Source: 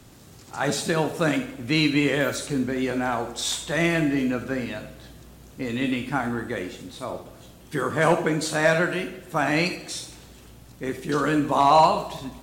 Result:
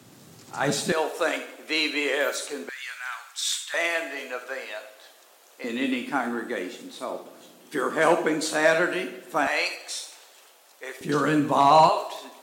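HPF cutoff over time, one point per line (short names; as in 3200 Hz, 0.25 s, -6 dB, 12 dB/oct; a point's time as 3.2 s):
HPF 24 dB/oct
120 Hz
from 0.92 s 400 Hz
from 2.69 s 1400 Hz
from 3.74 s 520 Hz
from 5.64 s 230 Hz
from 9.47 s 530 Hz
from 11.01 s 120 Hz
from 11.89 s 390 Hz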